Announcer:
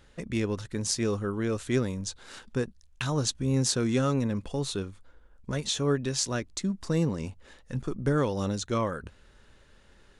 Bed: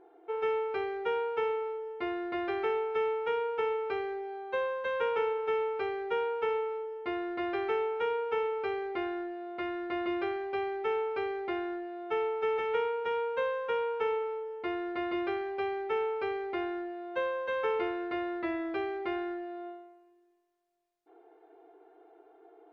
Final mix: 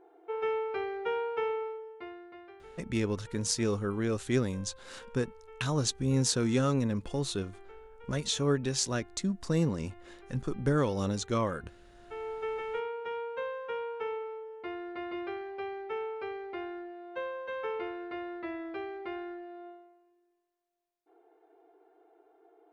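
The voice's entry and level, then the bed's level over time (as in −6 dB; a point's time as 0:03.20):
2.60 s, −1.5 dB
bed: 0:01.63 −1 dB
0:02.63 −21.5 dB
0:11.85 −21.5 dB
0:12.31 −5 dB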